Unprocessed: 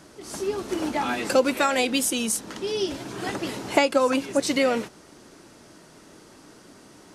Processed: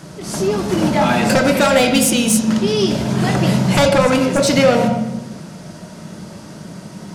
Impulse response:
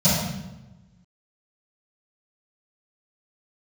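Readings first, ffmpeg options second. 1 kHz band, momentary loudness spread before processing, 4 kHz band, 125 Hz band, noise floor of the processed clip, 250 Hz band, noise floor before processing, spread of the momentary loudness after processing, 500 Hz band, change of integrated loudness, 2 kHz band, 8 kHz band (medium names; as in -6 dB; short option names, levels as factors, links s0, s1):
+8.0 dB, 10 LU, +8.5 dB, +24.0 dB, -36 dBFS, +12.0 dB, -51 dBFS, 21 LU, +8.5 dB, +9.5 dB, +8.0 dB, +8.5 dB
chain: -filter_complex "[0:a]aeval=exprs='0.531*sin(PI/2*3.55*val(0)/0.531)':c=same,asplit=2[s0][s1];[1:a]atrim=start_sample=2205,lowpass=5100,adelay=19[s2];[s1][s2]afir=irnorm=-1:irlink=0,volume=0.0944[s3];[s0][s3]amix=inputs=2:normalize=0,volume=0.531"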